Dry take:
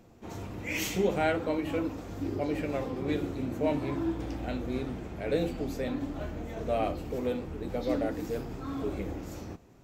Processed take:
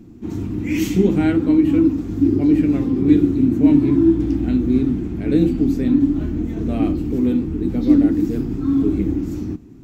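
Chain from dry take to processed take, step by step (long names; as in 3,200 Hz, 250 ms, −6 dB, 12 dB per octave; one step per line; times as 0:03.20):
low shelf with overshoot 410 Hz +10.5 dB, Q 3
level +2.5 dB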